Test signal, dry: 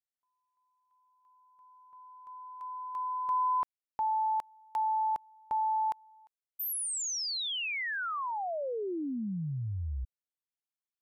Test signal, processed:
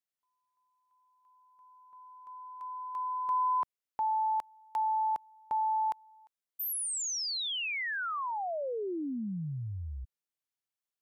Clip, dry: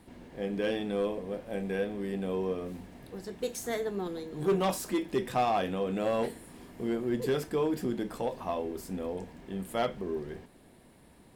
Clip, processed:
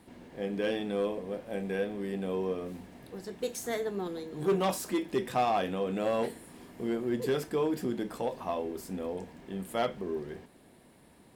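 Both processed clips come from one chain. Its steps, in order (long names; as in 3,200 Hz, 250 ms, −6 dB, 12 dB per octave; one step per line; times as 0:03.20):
low-shelf EQ 63 Hz −10 dB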